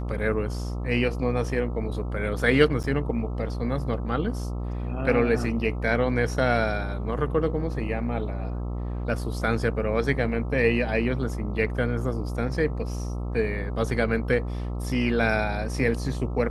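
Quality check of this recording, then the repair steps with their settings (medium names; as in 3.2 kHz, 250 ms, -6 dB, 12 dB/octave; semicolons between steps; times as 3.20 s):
buzz 60 Hz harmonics 22 -30 dBFS
2.83–2.84 s: dropout 8.7 ms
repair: de-hum 60 Hz, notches 22; interpolate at 2.83 s, 8.7 ms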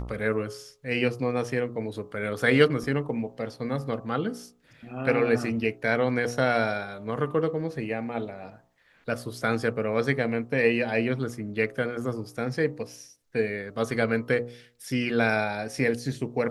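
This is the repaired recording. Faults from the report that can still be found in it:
nothing left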